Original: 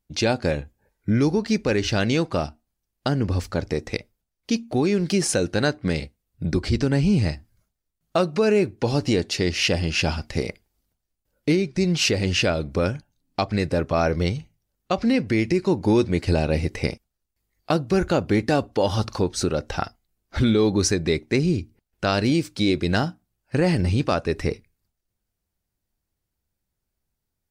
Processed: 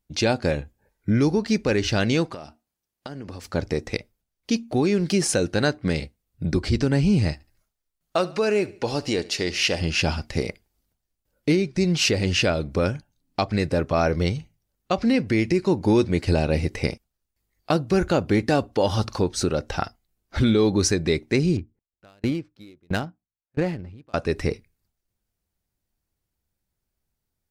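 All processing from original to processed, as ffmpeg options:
-filter_complex "[0:a]asettb=1/sr,asplit=3[a][b][c];[a]atrim=end=2.324[d];[b]atrim=start=2.32:end=3.54,asetpts=PTS-STARTPTS,afade=t=in:d=0.004:c=qsin,afade=t=out:st=1.216:d=0.004:c=qsin,highpass=f=220:p=1,acompressor=threshold=-31dB:ratio=12:attack=3.2:release=140:knee=1:detection=peak[e];[c]atrim=start=3.536[f];[d][e]acrossfade=d=0.004:c1=hsin:c2=qsin[g];[g][f]acrossfade=d=0.004:c1=qsin:c2=hsin,asettb=1/sr,asplit=3[h][i][j];[h]atrim=end=7.334[k];[i]atrim=start=7.33:end=9.81,asetpts=PTS-STARTPTS,afade=t=in:d=0.004:c=qsin,afade=t=out:st=2.476:d=0.004:c=qsin,equalizer=f=110:t=o:w=2.8:g=-8.5,aecho=1:1:72|144|216:0.106|0.0424|0.0169,atrim=end_sample=109368[l];[j]atrim=start=9.806[m];[k][l]acrossfade=d=0.004:c1=hsin:c2=qsin[n];[n][m]acrossfade=d=0.004:c1=qsin:c2=hsin,asettb=1/sr,asplit=3[o][p][q];[o]atrim=end=21.574[r];[p]atrim=start=21.57:end=24.14,asetpts=PTS-STARTPTS,afade=t=in:d=0.004:c=qsin,afade=t=out:st=2.566:d=0.004:c=qsin,adynamicsmooth=sensitivity=2.5:basefreq=1.5k,aeval=exprs='val(0)*pow(10,-39*if(lt(mod(1.5*n/s,1),2*abs(1.5)/1000),1-mod(1.5*n/s,1)/(2*abs(1.5)/1000),(mod(1.5*n/s,1)-2*abs(1.5)/1000)/(1-2*abs(1.5)/1000))/20)':c=same[s];[q]atrim=start=24.136[t];[r][s]acrossfade=d=0.004:c1=hsin:c2=qsin[u];[u][t]acrossfade=d=0.004:c1=qsin:c2=hsin"

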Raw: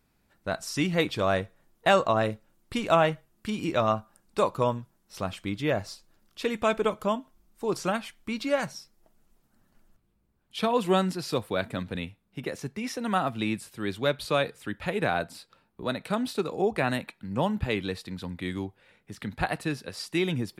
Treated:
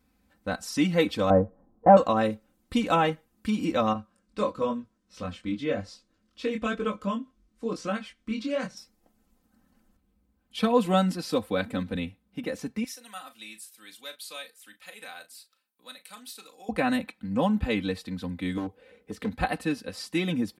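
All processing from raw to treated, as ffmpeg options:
-filter_complex "[0:a]asettb=1/sr,asplit=3[a][b][c];[a]atrim=end=1.304[d];[b]atrim=start=1.3:end=1.97,asetpts=PTS-STARTPTS,afade=t=in:d=0.004:c=qsin,afade=t=out:st=0.666:d=0.004:c=qsin,lowpass=f=1k:w=0.5412,lowpass=f=1k:w=1.3066,acontrast=69[e];[c]atrim=start=1.966[f];[d][e]acrossfade=d=0.004:c1=hsin:c2=qsin[g];[g][f]acrossfade=d=0.004:c1=qsin:c2=hsin,asettb=1/sr,asplit=3[h][i][j];[h]atrim=end=3.934[k];[i]atrim=start=3.93:end=8.77,asetpts=PTS-STARTPTS,afade=t=in:d=0.004:c=qsin,afade=t=out:st=4.836:d=0.004:c=qsin,lowpass=7.1k,equalizer=f=830:w=6.2:g=-11.5,flanger=delay=19.5:depth=4.4:speed=1[l];[j]atrim=start=8.766[m];[k][l]acrossfade=d=0.004:c1=hsin:c2=qsin[n];[n][m]acrossfade=d=0.004:c1=qsin:c2=hsin,asettb=1/sr,asplit=3[o][p][q];[o]atrim=end=12.844[r];[p]atrim=start=12.84:end=16.69,asetpts=PTS-STARTPTS,afade=t=in:d=0.004:c=qsin,afade=t=out:st=3.846:d=0.004:c=qsin,aderivative,asplit=2[s][t];[t]adelay=37,volume=-11dB[u];[s][u]amix=inputs=2:normalize=0,atrim=end_sample=169785[v];[q]atrim=start=16.686[w];[r][v]acrossfade=d=0.004:c1=hsin:c2=qsin[x];[x][w]acrossfade=d=0.004:c1=qsin:c2=hsin,asettb=1/sr,asplit=3[y][z][aa];[y]atrim=end=18.574[ab];[z]atrim=start=18.57:end=19.32,asetpts=PTS-STARTPTS,afade=t=in:d=0.004:c=qsin,afade=t=out:st=0.746:d=0.004:c=qsin,equalizer=f=440:t=o:w=0.54:g=15,asoftclip=type=hard:threshold=-26dB[ac];[aa]atrim=start=19.316[ad];[ab][ac]acrossfade=d=0.004:c1=hsin:c2=qsin[ae];[ae][ad]acrossfade=d=0.004:c1=qsin:c2=hsin,highpass=43,lowshelf=f=380:g=5.5,aecho=1:1:3.9:0.83,volume=-3dB"

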